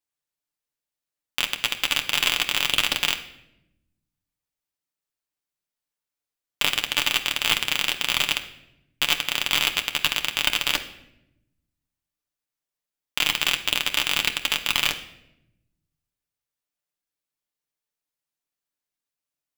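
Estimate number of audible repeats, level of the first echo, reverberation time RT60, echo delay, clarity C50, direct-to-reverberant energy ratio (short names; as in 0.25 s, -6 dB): none, none, 0.85 s, none, 12.0 dB, 4.0 dB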